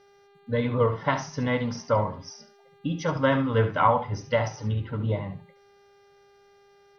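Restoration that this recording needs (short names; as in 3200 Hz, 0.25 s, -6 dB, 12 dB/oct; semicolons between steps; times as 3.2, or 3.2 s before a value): de-hum 400.9 Hz, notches 11; inverse comb 71 ms -11.5 dB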